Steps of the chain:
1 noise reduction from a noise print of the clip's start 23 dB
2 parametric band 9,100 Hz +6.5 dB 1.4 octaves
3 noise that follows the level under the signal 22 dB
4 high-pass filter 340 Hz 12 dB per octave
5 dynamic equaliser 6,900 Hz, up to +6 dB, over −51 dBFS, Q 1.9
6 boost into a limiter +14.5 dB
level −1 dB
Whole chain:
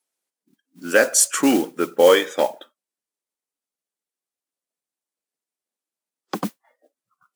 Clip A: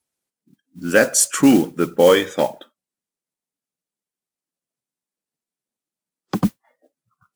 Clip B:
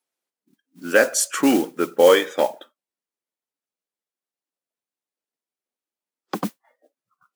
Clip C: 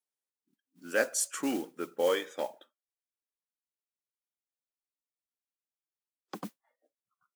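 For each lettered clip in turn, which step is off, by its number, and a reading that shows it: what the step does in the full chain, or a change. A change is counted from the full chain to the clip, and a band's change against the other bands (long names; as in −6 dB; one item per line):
4, change in crest factor −2.0 dB
2, 8 kHz band −5.0 dB
6, change in crest factor +4.0 dB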